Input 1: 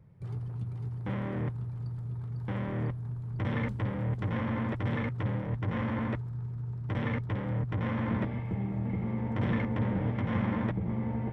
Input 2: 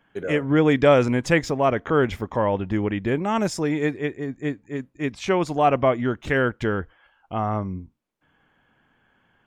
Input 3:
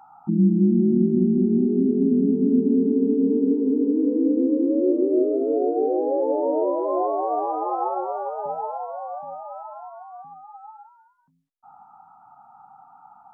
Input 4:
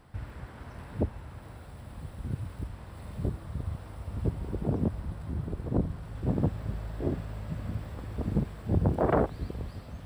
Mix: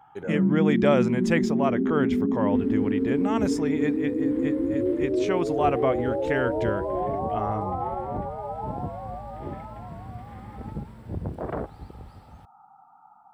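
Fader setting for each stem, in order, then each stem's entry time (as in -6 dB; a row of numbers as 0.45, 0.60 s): -15.5, -5.5, -5.0, -6.5 dB; 0.00, 0.00, 0.00, 2.40 s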